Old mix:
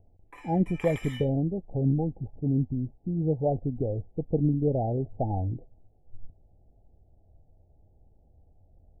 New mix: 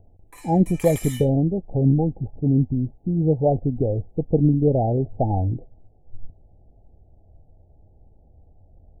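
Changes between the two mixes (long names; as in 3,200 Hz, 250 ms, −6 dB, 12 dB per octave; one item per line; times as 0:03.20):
speech +7.0 dB
background: remove Savitzky-Golay smoothing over 25 samples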